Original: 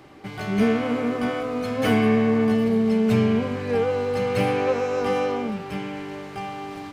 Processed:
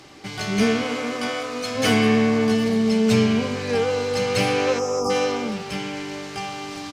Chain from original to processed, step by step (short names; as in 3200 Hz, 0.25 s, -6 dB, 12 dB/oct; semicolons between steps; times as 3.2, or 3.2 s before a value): 0.83–1.75 low shelf 290 Hz -9.5 dB; 4.79–5.1 spectral delete 1400–4800 Hz; bell 5800 Hz +14.5 dB 1.9 oct; speakerphone echo 0.21 s, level -15 dB; spring tank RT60 1.4 s, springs 54 ms, DRR 19.5 dB